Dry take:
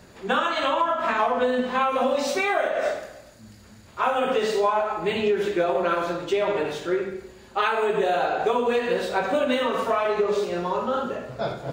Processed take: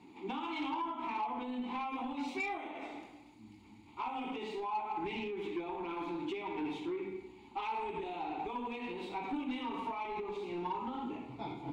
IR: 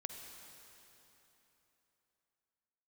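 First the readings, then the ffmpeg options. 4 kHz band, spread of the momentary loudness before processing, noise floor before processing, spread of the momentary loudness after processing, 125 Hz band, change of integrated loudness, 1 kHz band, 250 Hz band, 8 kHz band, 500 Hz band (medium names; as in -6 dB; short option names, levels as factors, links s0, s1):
-15.5 dB, 6 LU, -49 dBFS, 8 LU, -13.5 dB, -15.0 dB, -13.0 dB, -9.0 dB, under -20 dB, -20.0 dB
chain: -filter_complex "[0:a]aexciter=amount=2:drive=3.1:freq=3000,asplit=2[s0][s1];[s1]alimiter=limit=0.126:level=0:latency=1,volume=1.19[s2];[s0][s2]amix=inputs=2:normalize=0,acompressor=threshold=0.126:ratio=6,asplit=3[s3][s4][s5];[s3]bandpass=f=300:t=q:w=8,volume=1[s6];[s4]bandpass=f=870:t=q:w=8,volume=0.501[s7];[s5]bandpass=f=2240:t=q:w=8,volume=0.355[s8];[s6][s7][s8]amix=inputs=3:normalize=0,asoftclip=type=tanh:threshold=0.0376,asubboost=boost=3:cutoff=130"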